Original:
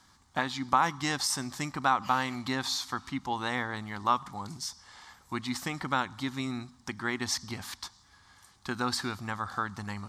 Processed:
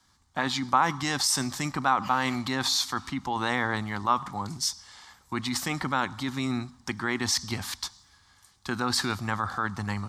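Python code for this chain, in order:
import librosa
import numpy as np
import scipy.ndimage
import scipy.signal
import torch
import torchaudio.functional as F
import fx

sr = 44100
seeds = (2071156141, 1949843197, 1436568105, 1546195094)

p1 = fx.over_compress(x, sr, threshold_db=-34.0, ratio=-0.5)
p2 = x + (p1 * 10.0 ** (-1.5 / 20.0))
y = fx.band_widen(p2, sr, depth_pct=40)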